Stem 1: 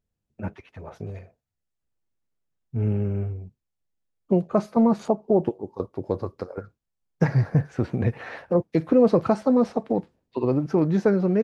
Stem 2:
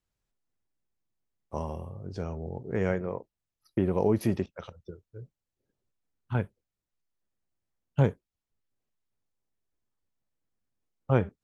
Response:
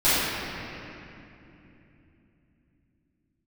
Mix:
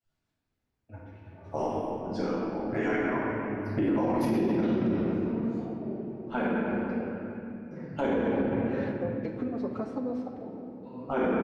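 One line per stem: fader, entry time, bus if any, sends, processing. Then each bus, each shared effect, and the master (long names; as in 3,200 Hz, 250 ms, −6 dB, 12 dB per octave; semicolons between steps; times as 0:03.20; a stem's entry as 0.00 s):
−3.5 dB, 0.50 s, send −23 dB, downward compressor 5 to 1, threshold −26 dBFS, peak gain reduction 12 dB; through-zero flanger with one copy inverted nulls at 0.22 Hz, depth 6.4 ms; automatic ducking −23 dB, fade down 0.95 s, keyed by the second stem
−2.0 dB, 0.00 s, send −7 dB, harmonic-percussive split with one part muted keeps percussive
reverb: on, RT60 3.0 s, pre-delay 4 ms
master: high-shelf EQ 6,800 Hz −7.5 dB; brickwall limiter −19 dBFS, peak gain reduction 10 dB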